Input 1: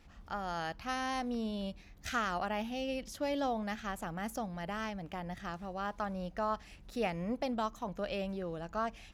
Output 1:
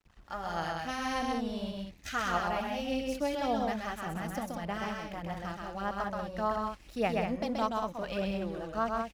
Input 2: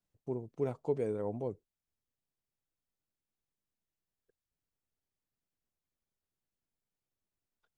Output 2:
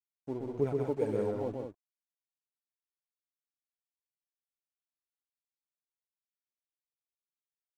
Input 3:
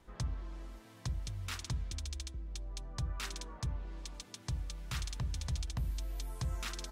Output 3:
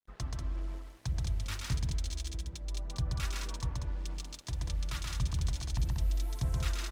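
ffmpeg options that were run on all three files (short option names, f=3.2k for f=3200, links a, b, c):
-af "aeval=exprs='sgn(val(0))*max(abs(val(0))-0.0015,0)':c=same,aphaser=in_gain=1:out_gain=1:delay=3.6:decay=0.43:speed=1.7:type=sinusoidal,aecho=1:1:128.3|189.5:0.708|0.501"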